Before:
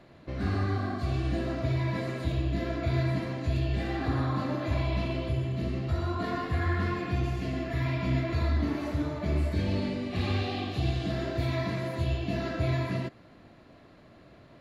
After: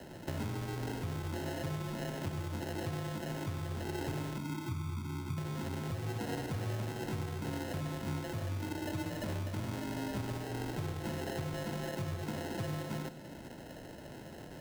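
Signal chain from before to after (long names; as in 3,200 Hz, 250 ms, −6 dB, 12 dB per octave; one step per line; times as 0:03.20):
0:04.37–0:05.38: inverse Chebyshev low-pass filter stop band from 1,300 Hz, stop band 70 dB
downward compressor 8 to 1, threshold −41 dBFS, peak gain reduction 18 dB
decimation without filtering 38×
frequency shifter +22 Hz
comb and all-pass reverb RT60 1.5 s, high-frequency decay 0.95×, pre-delay 10 ms, DRR 9.5 dB
level +5.5 dB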